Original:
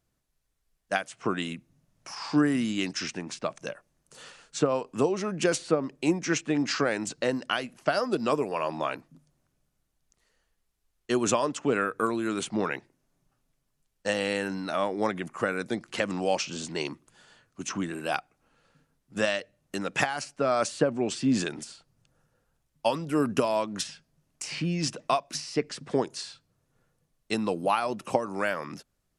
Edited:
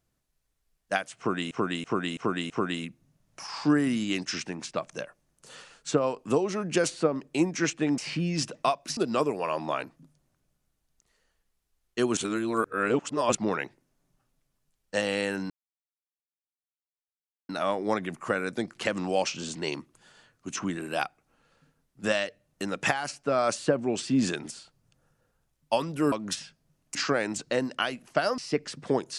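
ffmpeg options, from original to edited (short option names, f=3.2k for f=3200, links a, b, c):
-filter_complex "[0:a]asplit=13[a][b][c][d][e][f][g][h][i][j][k][l][m];[a]atrim=end=1.512[n];[b]atrim=start=1.178:end=1.512[o];[c]atrim=start=1.178:end=1.512[p];[d]atrim=start=1.178:end=1.512[q];[e]atrim=start=1.178:end=6.662[r];[f]atrim=start=24.428:end=25.422[s];[g]atrim=start=8.088:end=11.292[t];[h]atrim=start=11.288:end=12.472,asetpts=PTS-STARTPTS,areverse[u];[i]atrim=start=12.468:end=14.62,asetpts=PTS-STARTPTS,afade=t=out:st=2.148:d=0.004:c=hsin,apad=pad_dur=1.99[v];[j]atrim=start=14.62:end=23.252,asetpts=PTS-STARTPTS,afade=t=in:d=0.004:c=hsin[w];[k]atrim=start=23.598:end=24.432[x];[l]atrim=start=6.658:end=8.092[y];[m]atrim=start=25.418[z];[n][o]acrossfade=d=0.004:c1=hsin:c2=hsin[aa];[aa][p]acrossfade=d=0.004:c1=hsin:c2=hsin[ab];[ab][q]acrossfade=d=0.004:c1=hsin:c2=hsin[ac];[ac][r]acrossfade=d=0.004:c1=hsin:c2=hsin[ad];[ad][s]acrossfade=d=0.004:c1=hsin:c2=hsin[ae];[ae][t]acrossfade=d=0.004:c1=hsin:c2=hsin[af];[af][u]acrossfade=d=0.004:c1=hsin:c2=hsin[ag];[v][w]concat=n=2:v=0:a=1[ah];[ag][ah]acrossfade=d=0.004:c1=hsin:c2=hsin[ai];[ai][x]acrossfade=d=0.004:c1=hsin:c2=hsin[aj];[aj][y]acrossfade=d=0.004:c1=hsin:c2=hsin[ak];[ak][z]acrossfade=d=0.004:c1=hsin:c2=hsin"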